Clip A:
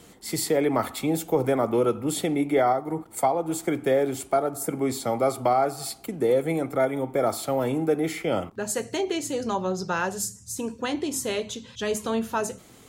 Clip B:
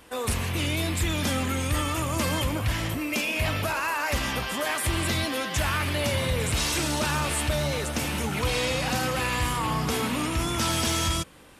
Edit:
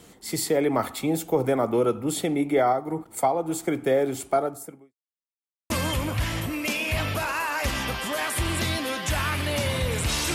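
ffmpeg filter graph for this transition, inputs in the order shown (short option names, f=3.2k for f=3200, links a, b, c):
-filter_complex "[0:a]apad=whole_dur=10.34,atrim=end=10.34,asplit=2[a][b];[a]atrim=end=4.94,asetpts=PTS-STARTPTS,afade=t=out:st=4.43:d=0.51:c=qua[c];[b]atrim=start=4.94:end=5.7,asetpts=PTS-STARTPTS,volume=0[d];[1:a]atrim=start=2.18:end=6.82,asetpts=PTS-STARTPTS,afade=t=in:d=0.004:c=hsin[e];[c][d][e]concat=n=3:v=0:a=1"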